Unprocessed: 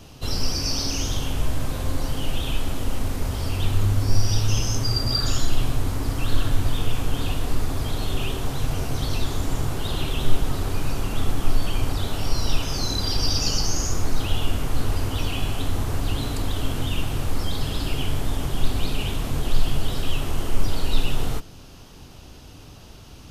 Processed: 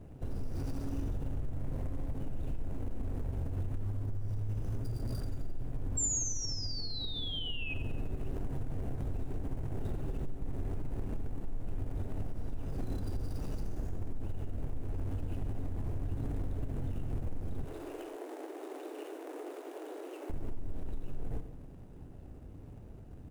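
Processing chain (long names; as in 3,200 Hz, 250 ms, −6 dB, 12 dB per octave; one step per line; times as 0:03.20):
running median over 41 samples
high-shelf EQ 5,800 Hz −9.5 dB
0:05.97–0:07.74: sound drawn into the spectrogram fall 2,500–7,500 Hz −23 dBFS
0:17.65–0:20.30: Butterworth high-pass 300 Hz 96 dB per octave
downward compressor 10 to 1, threshold −22 dBFS, peak gain reduction 14.5 dB
repeating echo 87 ms, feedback 54%, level −12 dB
brickwall limiter −23.5 dBFS, peak gain reduction 8.5 dB
drawn EQ curve 980 Hz 0 dB, 4,600 Hz −3 dB, 9,000 Hz +9 dB
level −4 dB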